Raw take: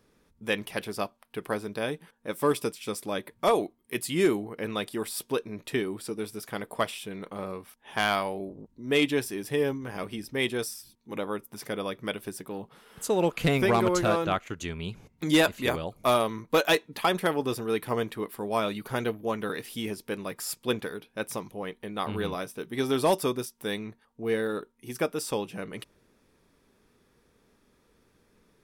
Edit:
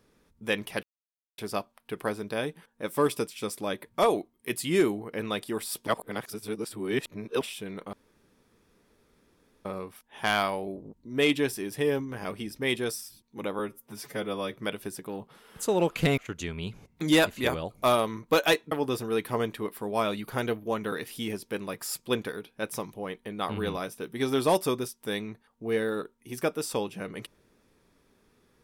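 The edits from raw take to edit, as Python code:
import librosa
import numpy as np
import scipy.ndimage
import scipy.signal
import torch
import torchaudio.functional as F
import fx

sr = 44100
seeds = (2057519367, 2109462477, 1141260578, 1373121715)

y = fx.edit(x, sr, fx.insert_silence(at_s=0.83, length_s=0.55),
    fx.reverse_span(start_s=5.32, length_s=1.54),
    fx.insert_room_tone(at_s=7.38, length_s=1.72),
    fx.stretch_span(start_s=11.32, length_s=0.63, factor=1.5),
    fx.cut(start_s=13.59, length_s=0.8),
    fx.cut(start_s=16.93, length_s=0.36), tone=tone)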